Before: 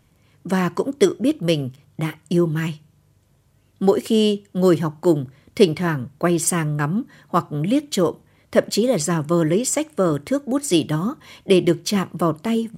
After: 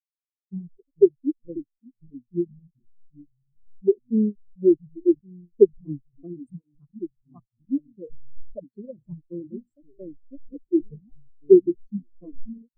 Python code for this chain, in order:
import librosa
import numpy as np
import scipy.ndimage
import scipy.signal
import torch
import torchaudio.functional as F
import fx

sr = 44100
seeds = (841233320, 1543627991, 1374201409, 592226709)

y = fx.delta_hold(x, sr, step_db=-17.0)
y = fx.echo_pitch(y, sr, ms=347, semitones=-3, count=3, db_per_echo=-6.0)
y = fx.spectral_expand(y, sr, expansion=4.0)